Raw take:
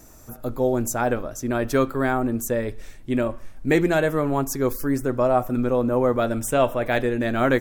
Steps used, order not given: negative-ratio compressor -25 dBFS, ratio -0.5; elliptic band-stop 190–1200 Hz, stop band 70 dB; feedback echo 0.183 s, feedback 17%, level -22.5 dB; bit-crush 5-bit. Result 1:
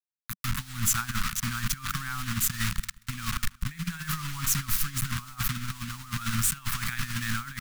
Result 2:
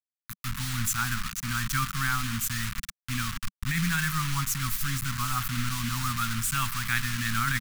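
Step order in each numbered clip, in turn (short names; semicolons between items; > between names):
bit-crush > feedback echo > negative-ratio compressor > elliptic band-stop; feedback echo > bit-crush > elliptic band-stop > negative-ratio compressor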